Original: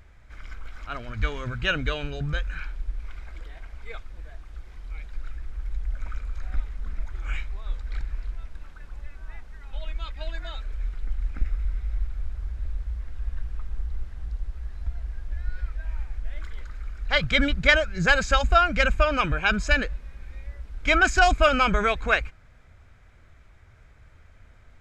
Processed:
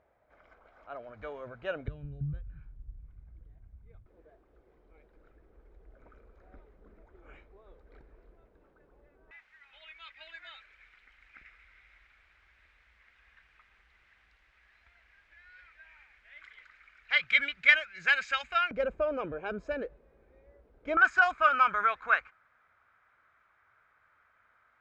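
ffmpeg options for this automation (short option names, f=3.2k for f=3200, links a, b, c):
-af "asetnsamples=n=441:p=0,asendcmd='1.88 bandpass f 110;4.06 bandpass f 430;9.31 bandpass f 2200;18.71 bandpass f 460;20.97 bandpass f 1300',bandpass=f=620:t=q:w=2.4:csg=0"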